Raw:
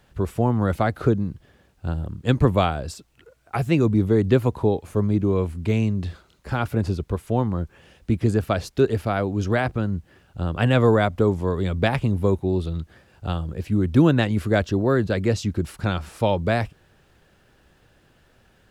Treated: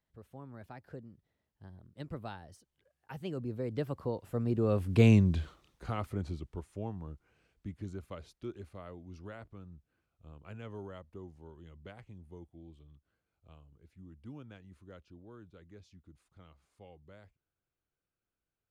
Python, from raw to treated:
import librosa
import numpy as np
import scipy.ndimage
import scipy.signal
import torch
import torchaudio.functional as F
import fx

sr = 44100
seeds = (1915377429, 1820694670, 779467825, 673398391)

y = fx.doppler_pass(x, sr, speed_mps=43, closest_m=9.2, pass_at_s=5.1)